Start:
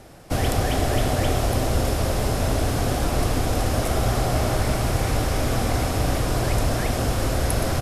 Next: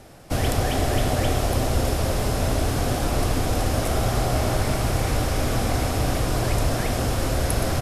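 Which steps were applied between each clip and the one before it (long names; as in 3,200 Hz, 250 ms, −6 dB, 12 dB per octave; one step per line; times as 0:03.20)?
hum removal 55.65 Hz, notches 39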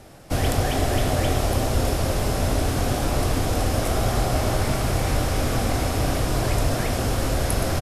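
double-tracking delay 22 ms −11.5 dB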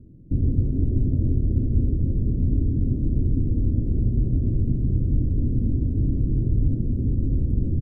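inverse Chebyshev low-pass filter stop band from 780 Hz, stop band 50 dB
level +2.5 dB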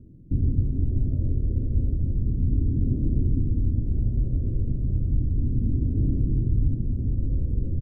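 phase shifter 0.33 Hz, delay 2.1 ms, feedback 35%
level −4.5 dB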